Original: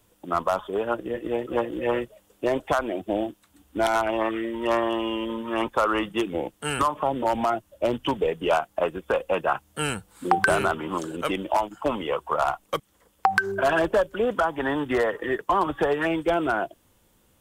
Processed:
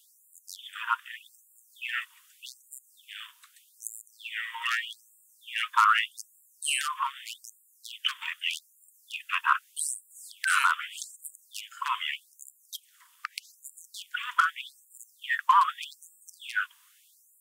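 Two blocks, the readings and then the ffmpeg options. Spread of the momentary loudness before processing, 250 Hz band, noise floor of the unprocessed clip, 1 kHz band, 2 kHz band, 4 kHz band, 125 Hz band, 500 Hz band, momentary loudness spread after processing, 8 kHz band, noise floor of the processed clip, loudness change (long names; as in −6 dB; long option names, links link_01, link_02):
6 LU, below −40 dB, −64 dBFS, −4.0 dB, −1.5 dB, +2.5 dB, below −40 dB, below −40 dB, 22 LU, +5.0 dB, −63 dBFS, −3.5 dB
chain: -af "alimiter=limit=-14dB:level=0:latency=1:release=119,acontrast=57,afftfilt=real='re*gte(b*sr/1024,900*pow(7100/900,0.5+0.5*sin(2*PI*0.82*pts/sr)))':imag='im*gte(b*sr/1024,900*pow(7100/900,0.5+0.5*sin(2*PI*0.82*pts/sr)))':win_size=1024:overlap=0.75"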